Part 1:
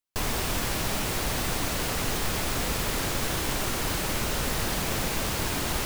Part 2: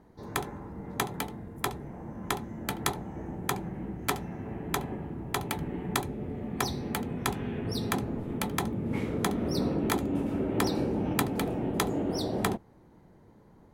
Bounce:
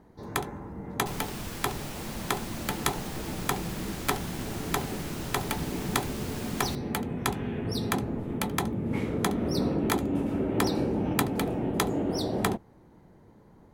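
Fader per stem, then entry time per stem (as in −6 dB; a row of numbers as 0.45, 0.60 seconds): −11.0, +1.5 decibels; 0.90, 0.00 seconds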